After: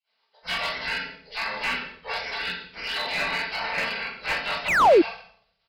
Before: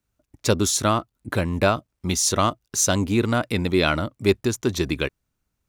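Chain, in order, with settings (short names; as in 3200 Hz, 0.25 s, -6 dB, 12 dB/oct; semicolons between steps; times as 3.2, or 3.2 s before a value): nonlinear frequency compression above 1100 Hz 1.5:1; spectral gate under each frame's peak -25 dB weak; HPF 87 Hz 6 dB/oct; comb 4.5 ms, depth 45%; soft clip -32.5 dBFS, distortion -13 dB; reverb RT60 0.70 s, pre-delay 3 ms, DRR -11.5 dB; painted sound fall, 4.68–5.02, 300–2800 Hz -14 dBFS; downsampling 11025 Hz; slew limiter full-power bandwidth 180 Hz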